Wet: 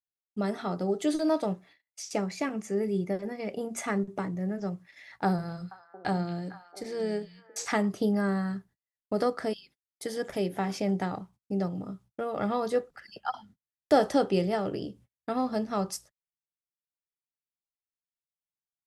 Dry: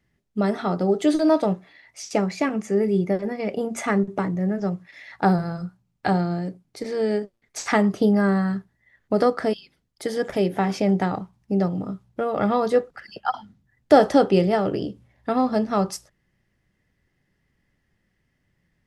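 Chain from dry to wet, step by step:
noise gate −46 dBFS, range −37 dB
high-shelf EQ 5,700 Hz +8.5 dB
0:05.26–0:07.65: echo through a band-pass that steps 226 ms, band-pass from 3,300 Hz, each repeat −1.4 octaves, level −8 dB
level −8 dB

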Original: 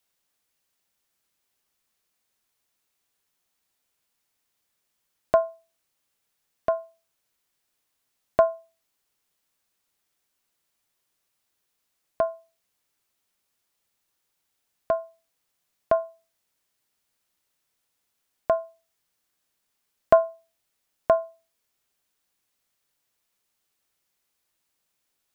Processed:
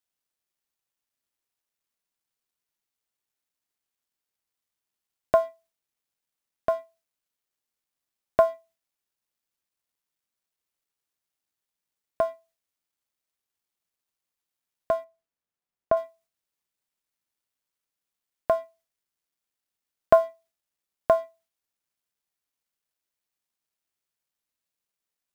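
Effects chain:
mu-law and A-law mismatch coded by A
0:15.04–0:15.97: high-shelf EQ 2,500 Hz −11 dB

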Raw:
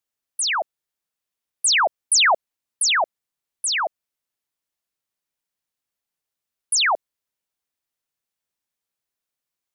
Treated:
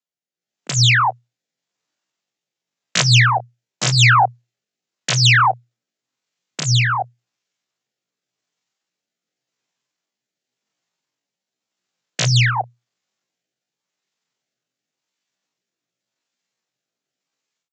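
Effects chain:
stylus tracing distortion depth 0.14 ms
downsampling to 16,000 Hz
tempo change 0.55×
downward compressor 2.5 to 1, threshold −22 dBFS, peak gain reduction 5.5 dB
rotating-speaker cabinet horn 0.9 Hz
automatic gain control gain up to 11.5 dB
frequency shifter +120 Hz
low-shelf EQ 67 Hz +10.5 dB
level −1 dB

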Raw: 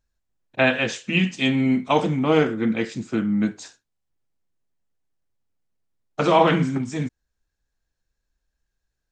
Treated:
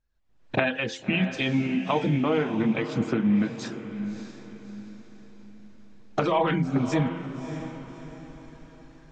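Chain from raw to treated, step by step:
camcorder AGC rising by 51 dB per second
reverb reduction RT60 0.66 s
hum removal 87.67 Hz, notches 11
in parallel at −3 dB: brickwall limiter −12.5 dBFS, peak gain reduction 10 dB
on the sum: high-frequency loss of the air 130 metres
on a send: feedback delay with all-pass diffusion 612 ms, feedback 42%, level −10 dB
on the sum: level −8.5 dB

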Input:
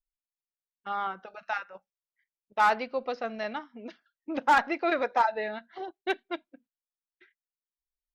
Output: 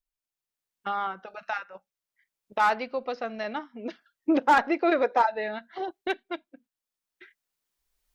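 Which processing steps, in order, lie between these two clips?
camcorder AGC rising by 10 dB per second
0:03.46–0:05.27: dynamic equaliser 400 Hz, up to +7 dB, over −41 dBFS, Q 1

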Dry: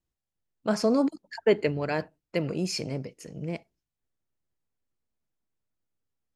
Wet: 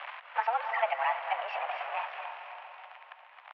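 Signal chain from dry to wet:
converter with a step at zero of −27 dBFS
feedback delay with all-pass diffusion 460 ms, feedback 49%, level −8 dB
tempo change 1.8×
single-sideband voice off tune +240 Hz 510–2,600 Hz
multiband upward and downward compressor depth 40%

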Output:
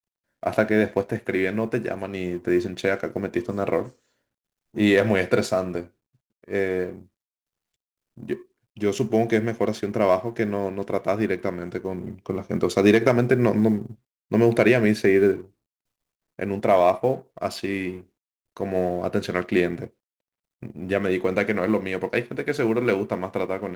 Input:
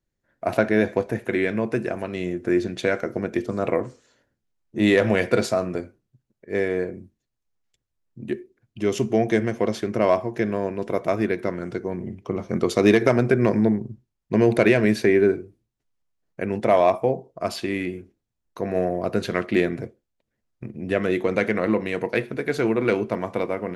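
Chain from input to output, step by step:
mu-law and A-law mismatch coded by A

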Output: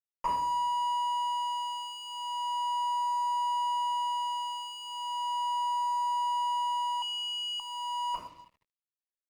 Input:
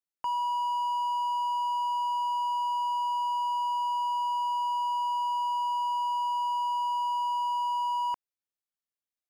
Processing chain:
feedback echo with a low-pass in the loop 76 ms, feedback 76%, low-pass 4,200 Hz, level −18.5 dB
reverb reduction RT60 0.65 s
downward compressor 6 to 1, threshold −37 dBFS, peak gain reduction 9 dB
rectangular room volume 170 cubic metres, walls mixed, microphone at 4.8 metres
dead-zone distortion −54 dBFS
0:07.02–0:07.60: high-pass with resonance 2,600 Hz, resonance Q 3
harmonic generator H 2 −22 dB, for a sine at −12 dBFS
phaser whose notches keep moving one way falling 0.36 Hz

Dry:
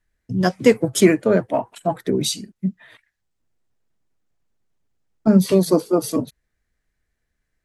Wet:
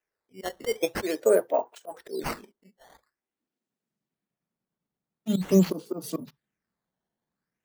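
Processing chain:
volume swells 164 ms
high-pass filter sweep 460 Hz → 170 Hz, 0:02.77–0:03.94
sample-and-hold swept by an LFO 10×, swing 160% 0.46 Hz
on a send: convolution reverb, pre-delay 3 ms, DRR 20.5 dB
on the sum: level −8 dB

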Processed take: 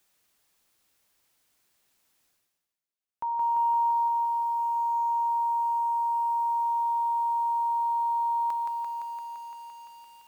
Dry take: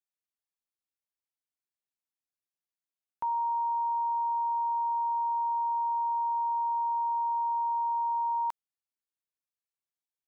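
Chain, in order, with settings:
reversed playback
upward compression, threshold −51 dBFS
reversed playback
feedback echo at a low word length 171 ms, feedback 80%, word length 10 bits, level −3.5 dB

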